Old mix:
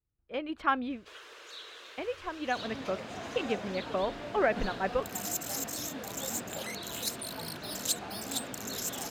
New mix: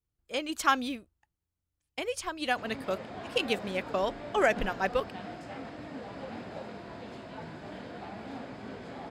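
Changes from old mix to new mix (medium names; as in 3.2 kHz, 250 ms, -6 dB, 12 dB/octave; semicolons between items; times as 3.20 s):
speech: remove distance through air 460 m; first sound: muted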